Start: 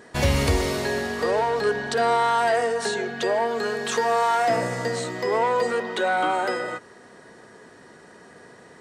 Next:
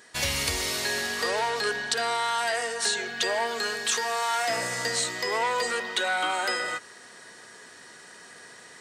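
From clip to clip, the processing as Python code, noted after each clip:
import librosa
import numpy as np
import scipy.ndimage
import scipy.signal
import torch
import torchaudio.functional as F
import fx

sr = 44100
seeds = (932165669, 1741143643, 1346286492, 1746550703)

y = fx.tilt_shelf(x, sr, db=-9.5, hz=1300.0)
y = fx.rider(y, sr, range_db=10, speed_s=0.5)
y = F.gain(torch.from_numpy(y), -2.5).numpy()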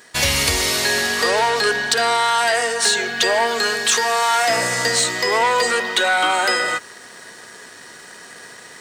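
y = fx.leveller(x, sr, passes=1)
y = F.gain(torch.from_numpy(y), 6.0).numpy()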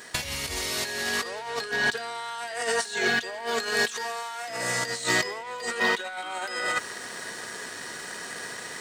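y = fx.over_compress(x, sr, threshold_db=-24.0, ratio=-0.5)
y = F.gain(torch.from_numpy(y), -4.0).numpy()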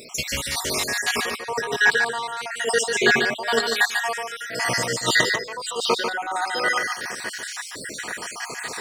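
y = fx.spec_dropout(x, sr, seeds[0], share_pct=63)
y = y + 10.0 ** (-5.5 / 20.0) * np.pad(y, (int(145 * sr / 1000.0), 0))[:len(y)]
y = F.gain(torch.from_numpy(y), 8.5).numpy()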